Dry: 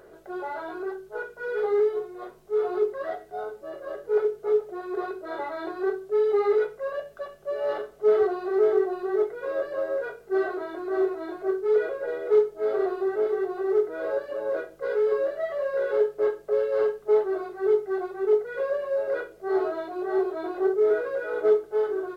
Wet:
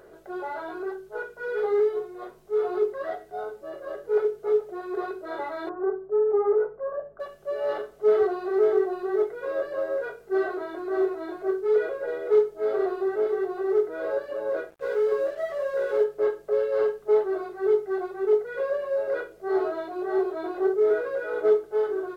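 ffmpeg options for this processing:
-filter_complex "[0:a]asettb=1/sr,asplit=3[a][b][c];[a]atrim=end=5.694[d];[b]atrim=start=5.69:end=7.2,asetpts=PTS-STARTPTS,afade=t=in:d=0.004:c=qsin,afade=t=out:st=1.506:d=0.004:c=qsin,lowpass=f=1.3k:w=0.5412,lowpass=f=1.3k:w=1.3066[e];[c]atrim=start=7.196[f];[d][e]acrossfade=d=0.004:c1=hsin:c2=qsin[g];[g][f]acrossfade=d=0.004:c1=qsin:c2=hsin,asettb=1/sr,asplit=3[h][i][j];[h]atrim=end=14.704[k];[i]atrim=start=14.7:end=16.04,asetpts=PTS-STARTPTS,afade=t=in:d=0.004:c=qsin,afade=t=out:st=1.336:d=0.004:c=qsin,aeval=exprs='sgn(val(0))*max(abs(val(0))-0.00299,0)':c=same[l];[j]atrim=start=16.036[m];[k][l]acrossfade=d=0.004:c1=hsin:c2=qsin[n];[n][m]acrossfade=d=0.004:c1=qsin:c2=hsin"

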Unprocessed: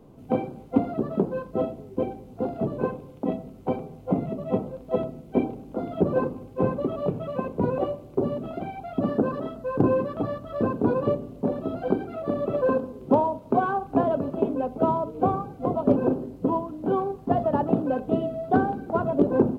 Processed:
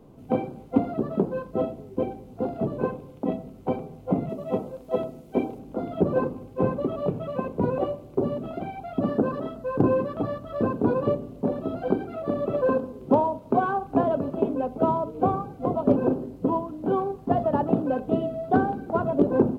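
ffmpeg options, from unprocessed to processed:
-filter_complex "[0:a]asettb=1/sr,asplit=3[a][b][c];[a]atrim=end=4.294[d];[b]atrim=start=4.29:end=5.59,asetpts=PTS-STARTPTS,afade=t=in:d=0.004:c=qsin,afade=t=out:st=1.296:d=0.004:c=qsin,bass=f=250:g=-5,treble=f=4k:g=5[e];[c]atrim=start=5.586[f];[d][e]acrossfade=d=0.004:c1=hsin:c2=qsin[g];[g][f]acrossfade=d=0.004:c1=qsin:c2=hsin"

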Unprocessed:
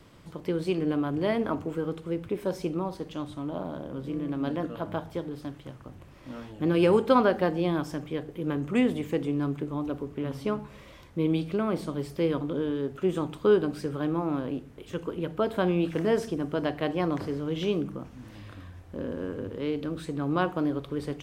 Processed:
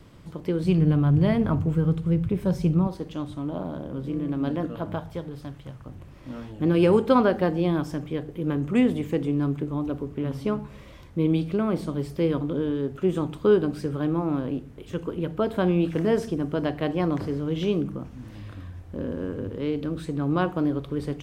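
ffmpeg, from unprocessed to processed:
-filter_complex "[0:a]asettb=1/sr,asplit=3[a][b][c];[a]atrim=end=0.634[d];[b]atrim=start=0.63:end=2.87,asetpts=PTS-STARTPTS,afade=t=in:d=0.004:c=qsin,afade=t=out:st=2.236:d=0.004:c=qsin,lowshelf=f=210:t=q:w=1.5:g=9.5[e];[c]atrim=start=2.866[f];[d][e]acrossfade=d=0.004:c1=hsin:c2=qsin[g];[g][f]acrossfade=d=0.004:c1=qsin:c2=hsin,asettb=1/sr,asplit=3[h][i][j];[h]atrim=end=4.954[k];[i]atrim=start=4.95:end=5.87,asetpts=PTS-STARTPTS,afade=t=in:d=0.004:c=qsin,afade=t=out:st=0.916:d=0.004:c=qsin,equalizer=f=310:w=1.5:g=-6.5[l];[j]atrim=start=5.866[m];[k][l]acrossfade=d=0.004:c1=hsin:c2=qsin[n];[n][m]acrossfade=d=0.004:c1=qsin:c2=hsin,lowshelf=f=270:g=7"

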